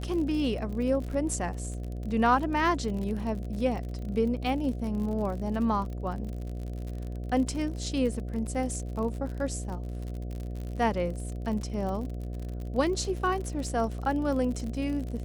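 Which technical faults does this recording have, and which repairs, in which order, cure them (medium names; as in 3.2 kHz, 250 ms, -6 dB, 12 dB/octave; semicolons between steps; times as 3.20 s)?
buzz 60 Hz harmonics 12 -35 dBFS
crackle 52 per s -35 dBFS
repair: de-click; de-hum 60 Hz, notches 12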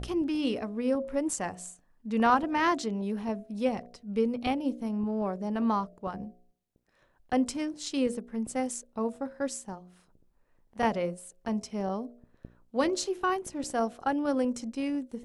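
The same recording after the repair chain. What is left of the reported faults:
nothing left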